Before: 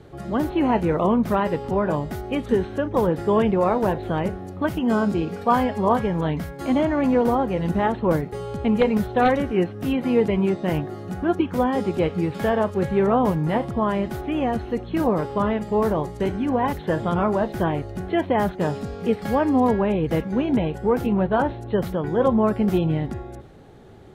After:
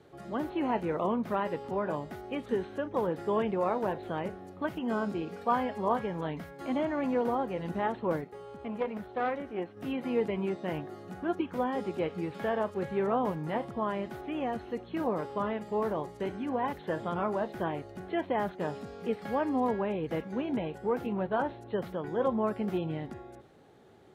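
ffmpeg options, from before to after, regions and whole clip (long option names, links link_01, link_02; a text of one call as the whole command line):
ffmpeg -i in.wav -filter_complex "[0:a]asettb=1/sr,asplit=3[link_01][link_02][link_03];[link_01]atrim=end=8.244[link_04];[link_02]atrim=start=8.24:end=9.77,asetpts=PTS-STARTPTS,afade=type=in:duration=0.004:curve=qsin,afade=type=out:start_time=1.526:duration=0.004:curve=qsin,acrossover=split=3000[link_05][link_06];[link_06]acompressor=threshold=-57dB:ratio=4:attack=1:release=60[link_07];[link_05][link_07]amix=inputs=2:normalize=0,equalizer=frequency=130:width=1.4:gain=-4,aeval=exprs='(tanh(3.98*val(0)+0.7)-tanh(0.7))/3.98':channel_layout=same[link_08];[link_03]atrim=start=9.766[link_09];[link_04][link_08]acrossfade=duration=0.004:curve1=hsin:curve2=qsin[link_10];[link_10][link_09]acrossfade=duration=0.004:curve1=qsin:curve2=hsin,acrossover=split=3700[link_11][link_12];[link_12]acompressor=threshold=-52dB:ratio=4:attack=1:release=60[link_13];[link_11][link_13]amix=inputs=2:normalize=0,highpass=frequency=270:poles=1,volume=-8dB" out.wav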